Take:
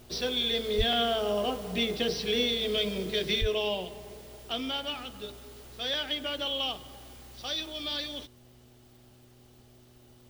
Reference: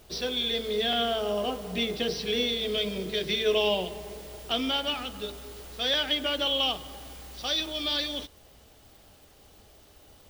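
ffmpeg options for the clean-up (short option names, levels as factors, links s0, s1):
-filter_complex "[0:a]bandreject=f=122:t=h:w=4,bandreject=f=244:t=h:w=4,bandreject=f=366:t=h:w=4,asplit=3[s0][s1][s2];[s0]afade=t=out:st=0.77:d=0.02[s3];[s1]highpass=f=140:w=0.5412,highpass=f=140:w=1.3066,afade=t=in:st=0.77:d=0.02,afade=t=out:st=0.89:d=0.02[s4];[s2]afade=t=in:st=0.89:d=0.02[s5];[s3][s4][s5]amix=inputs=3:normalize=0,asplit=3[s6][s7][s8];[s6]afade=t=out:st=3.4:d=0.02[s9];[s7]highpass=f=140:w=0.5412,highpass=f=140:w=1.3066,afade=t=in:st=3.4:d=0.02,afade=t=out:st=3.52:d=0.02[s10];[s8]afade=t=in:st=3.52:d=0.02[s11];[s9][s10][s11]amix=inputs=3:normalize=0,asetnsamples=n=441:p=0,asendcmd='3.41 volume volume 5dB',volume=1"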